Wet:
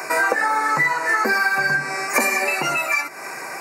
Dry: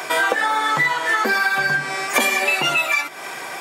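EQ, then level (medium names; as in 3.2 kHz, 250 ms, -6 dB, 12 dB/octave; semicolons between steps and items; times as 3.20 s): high-pass 100 Hz; Butterworth band-stop 3.3 kHz, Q 1.9; band-stop 720 Hz, Q 21; 0.0 dB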